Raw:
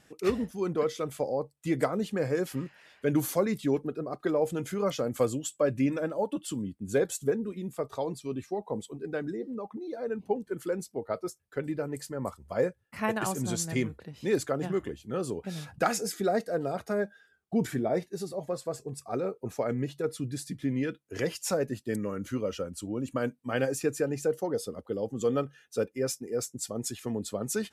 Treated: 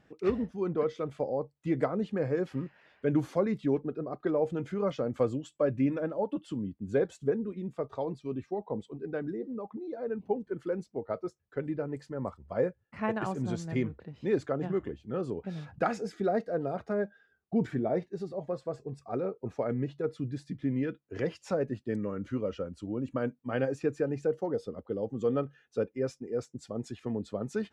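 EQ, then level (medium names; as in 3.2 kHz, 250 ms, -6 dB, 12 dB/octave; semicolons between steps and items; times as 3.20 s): tape spacing loss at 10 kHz 26 dB; 0.0 dB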